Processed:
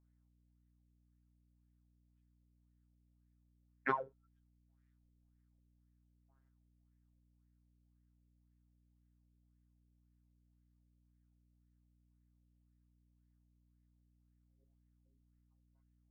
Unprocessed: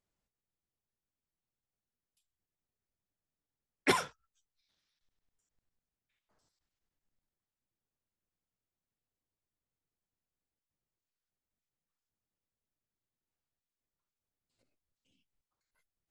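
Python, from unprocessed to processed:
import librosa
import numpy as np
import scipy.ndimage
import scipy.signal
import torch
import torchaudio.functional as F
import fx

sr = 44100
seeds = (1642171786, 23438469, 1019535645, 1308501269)

y = fx.robotise(x, sr, hz=134.0)
y = fx.filter_lfo_lowpass(y, sr, shape='sine', hz=1.9, low_hz=420.0, high_hz=1900.0, q=4.7)
y = fx.add_hum(y, sr, base_hz=60, snr_db=19)
y = y * 10.0 ** (-8.0 / 20.0)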